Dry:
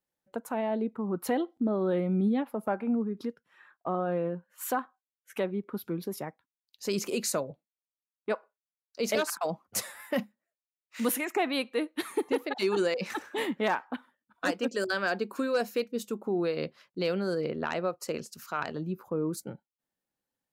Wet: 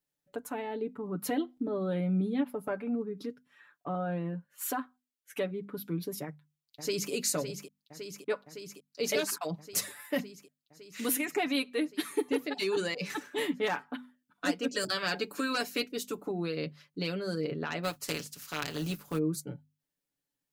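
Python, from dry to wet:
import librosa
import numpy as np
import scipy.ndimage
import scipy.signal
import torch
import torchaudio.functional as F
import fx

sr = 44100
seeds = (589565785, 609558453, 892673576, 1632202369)

y = fx.echo_throw(x, sr, start_s=6.22, length_s=0.89, ms=560, feedback_pct=80, wet_db=-8.5)
y = fx.spec_clip(y, sr, under_db=13, at=(14.69, 16.3), fade=0.02)
y = fx.spec_flatten(y, sr, power=0.53, at=(17.83, 19.17), fade=0.02)
y = fx.peak_eq(y, sr, hz=850.0, db=-7.5, octaves=1.9)
y = fx.hum_notches(y, sr, base_hz=50, count=5)
y = y + 0.69 * np.pad(y, (int(6.9 * sr / 1000.0), 0))[:len(y)]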